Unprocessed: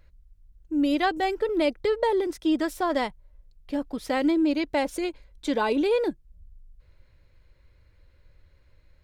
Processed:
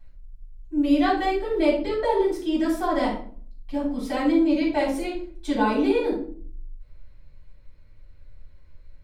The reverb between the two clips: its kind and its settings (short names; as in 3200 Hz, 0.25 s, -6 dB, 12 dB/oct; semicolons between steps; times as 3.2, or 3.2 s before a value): shoebox room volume 450 m³, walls furnished, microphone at 8.4 m; gain -10.5 dB